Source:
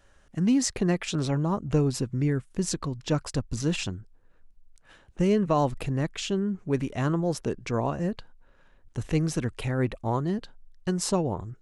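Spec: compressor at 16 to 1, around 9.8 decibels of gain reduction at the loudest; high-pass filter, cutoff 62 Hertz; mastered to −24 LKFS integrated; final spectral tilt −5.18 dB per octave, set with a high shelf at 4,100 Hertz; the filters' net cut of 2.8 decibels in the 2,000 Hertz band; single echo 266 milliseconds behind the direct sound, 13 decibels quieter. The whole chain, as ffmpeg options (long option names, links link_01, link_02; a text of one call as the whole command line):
ffmpeg -i in.wav -af "highpass=62,equalizer=frequency=2000:width_type=o:gain=-4.5,highshelf=frequency=4100:gain=3,acompressor=threshold=-28dB:ratio=16,aecho=1:1:266:0.224,volume=10dB" out.wav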